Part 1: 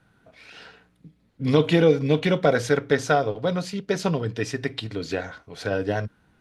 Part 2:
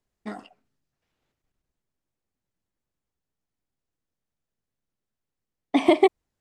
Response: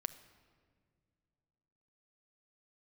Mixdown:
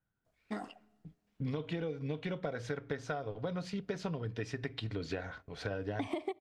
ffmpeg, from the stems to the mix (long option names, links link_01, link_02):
-filter_complex "[0:a]aemphasis=mode=reproduction:type=bsi,agate=range=-21dB:threshold=-41dB:ratio=16:detection=peak,lowshelf=frequency=410:gain=-8.5,volume=-4.5dB,asplit=2[link_01][link_02];[link_02]volume=-22dB[link_03];[1:a]adelay=250,volume=-4dB,asplit=2[link_04][link_05];[link_05]volume=-11dB[link_06];[2:a]atrim=start_sample=2205[link_07];[link_03][link_06]amix=inputs=2:normalize=0[link_08];[link_08][link_07]afir=irnorm=-1:irlink=0[link_09];[link_01][link_04][link_09]amix=inputs=3:normalize=0,acompressor=threshold=-33dB:ratio=16"